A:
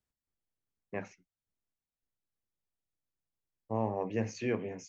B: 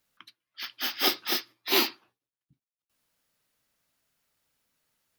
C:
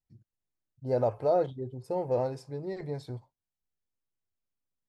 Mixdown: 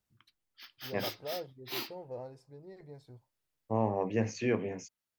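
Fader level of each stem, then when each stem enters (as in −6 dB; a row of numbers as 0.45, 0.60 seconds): +2.5, −14.5, −14.0 decibels; 0.00, 0.00, 0.00 seconds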